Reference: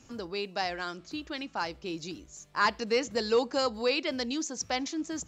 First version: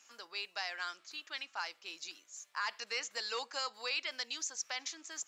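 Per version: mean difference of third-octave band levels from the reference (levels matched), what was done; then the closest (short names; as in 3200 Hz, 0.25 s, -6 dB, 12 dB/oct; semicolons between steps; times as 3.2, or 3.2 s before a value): 8.5 dB: HPF 1400 Hz 12 dB/oct; bell 4100 Hz -3 dB 2.1 oct; limiter -26.5 dBFS, peak gain reduction 8.5 dB; gain +1 dB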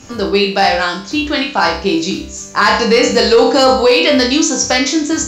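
5.0 dB: resonator bank C2 fifth, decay 0.47 s; in parallel at -3 dB: one-sided clip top -36.5 dBFS, bottom -31.5 dBFS; on the sum: maximiser +29.5 dB; gain -1 dB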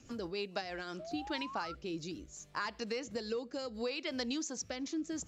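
3.5 dB: compressor 12:1, threshold -33 dBFS, peak gain reduction 13.5 dB; rotary speaker horn 6.7 Hz, later 0.7 Hz, at 0.47; painted sound rise, 0.99–1.75, 610–1400 Hz -47 dBFS; gain +1 dB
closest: third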